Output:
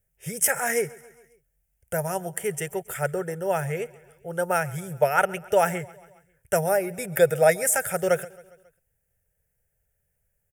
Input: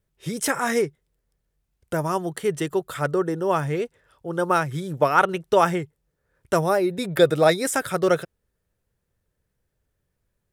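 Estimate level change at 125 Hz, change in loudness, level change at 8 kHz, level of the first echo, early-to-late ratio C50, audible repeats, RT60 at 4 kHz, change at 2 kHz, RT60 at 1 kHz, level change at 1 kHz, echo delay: -3.5 dB, -2.0 dB, +5.5 dB, -22.0 dB, none, 3, none, -0.5 dB, none, -4.0 dB, 0.136 s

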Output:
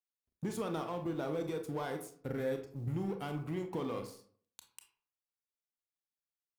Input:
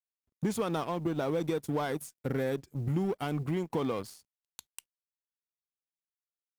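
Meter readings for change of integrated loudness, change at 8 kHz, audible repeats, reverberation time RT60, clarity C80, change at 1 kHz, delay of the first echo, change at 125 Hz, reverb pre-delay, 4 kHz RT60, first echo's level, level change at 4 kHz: -5.5 dB, -6.5 dB, none, 0.55 s, 13.5 dB, -5.5 dB, none, -6.0 dB, 25 ms, 0.30 s, none, -6.0 dB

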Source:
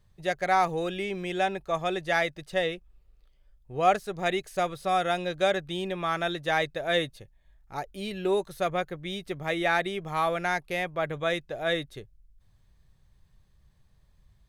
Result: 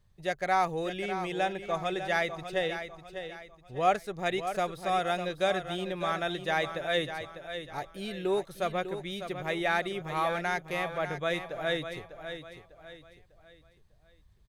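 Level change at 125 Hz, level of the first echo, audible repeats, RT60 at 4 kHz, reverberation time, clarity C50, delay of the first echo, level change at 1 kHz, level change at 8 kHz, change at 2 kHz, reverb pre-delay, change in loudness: -2.5 dB, -9.5 dB, 3, none, none, none, 0.599 s, -2.5 dB, -2.5 dB, -2.5 dB, none, -3.0 dB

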